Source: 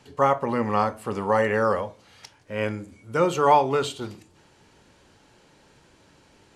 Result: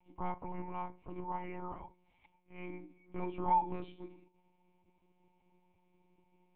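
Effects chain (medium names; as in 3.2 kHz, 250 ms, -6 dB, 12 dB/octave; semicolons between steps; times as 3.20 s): vowel filter u; monotone LPC vocoder at 8 kHz 180 Hz; trim -3 dB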